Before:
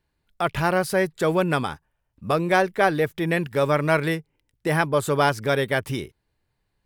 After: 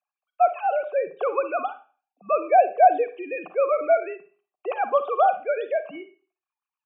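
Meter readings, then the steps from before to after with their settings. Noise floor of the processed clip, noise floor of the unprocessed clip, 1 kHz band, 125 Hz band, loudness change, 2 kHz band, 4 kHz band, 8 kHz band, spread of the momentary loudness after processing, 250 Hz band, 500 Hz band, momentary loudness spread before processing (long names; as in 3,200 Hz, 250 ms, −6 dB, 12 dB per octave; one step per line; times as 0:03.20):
below −85 dBFS, −76 dBFS, +4.0 dB, below −35 dB, 0.0 dB, −9.5 dB, below −15 dB, below −40 dB, 15 LU, −15.0 dB, +0.5 dB, 11 LU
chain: three sine waves on the formant tracks
formant filter a
four-comb reverb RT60 0.38 s, DRR 10.5 dB
level +8.5 dB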